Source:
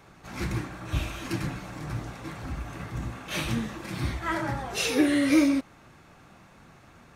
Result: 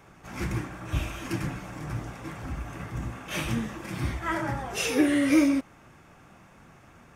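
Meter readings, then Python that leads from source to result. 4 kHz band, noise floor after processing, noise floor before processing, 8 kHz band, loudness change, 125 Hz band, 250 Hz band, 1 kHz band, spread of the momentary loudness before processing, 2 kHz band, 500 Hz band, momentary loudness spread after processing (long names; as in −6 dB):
−2.5 dB, −54 dBFS, −54 dBFS, −0.5 dB, 0.0 dB, 0.0 dB, 0.0 dB, 0.0 dB, 15 LU, 0.0 dB, 0.0 dB, 15 LU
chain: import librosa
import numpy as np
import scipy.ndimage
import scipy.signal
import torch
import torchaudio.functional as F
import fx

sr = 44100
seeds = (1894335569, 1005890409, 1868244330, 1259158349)

y = fx.peak_eq(x, sr, hz=4100.0, db=-10.0, octaves=0.26)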